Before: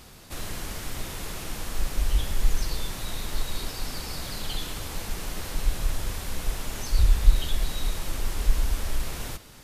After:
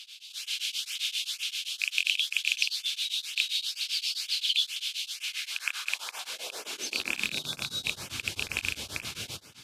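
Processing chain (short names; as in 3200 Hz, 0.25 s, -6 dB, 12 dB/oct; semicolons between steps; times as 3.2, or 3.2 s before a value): rattling part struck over -26 dBFS, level -11 dBFS; weighting filter D; spectral gain 7.33–7.84, 1600–3400 Hz -12 dB; high shelf 12000 Hz -5 dB; notch 1900 Hz, Q 5.7; AGC gain up to 3.5 dB; LFO notch saw up 2.1 Hz 390–4600 Hz; soft clip -11.5 dBFS, distortion -11 dB; high-pass sweep 3000 Hz -> 92 Hz, 5.12–7.86; beating tremolo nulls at 7.6 Hz; gain -4 dB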